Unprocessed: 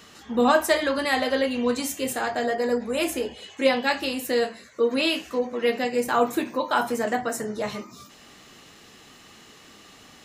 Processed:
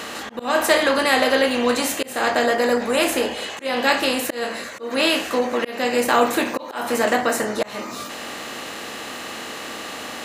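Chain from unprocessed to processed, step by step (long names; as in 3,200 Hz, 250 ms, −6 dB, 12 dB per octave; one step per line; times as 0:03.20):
compressor on every frequency bin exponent 0.6
low-shelf EQ 430 Hz −4 dB
volume swells 248 ms
level +3 dB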